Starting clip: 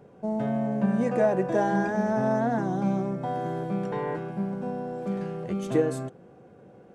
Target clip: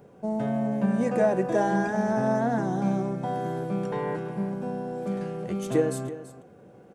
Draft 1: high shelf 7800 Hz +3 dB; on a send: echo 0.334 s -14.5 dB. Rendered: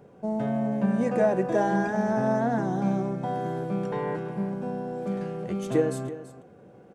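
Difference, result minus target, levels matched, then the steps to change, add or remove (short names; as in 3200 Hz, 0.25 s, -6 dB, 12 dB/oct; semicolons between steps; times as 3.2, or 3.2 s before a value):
8000 Hz band -3.0 dB
change: high shelf 7800 Hz +10 dB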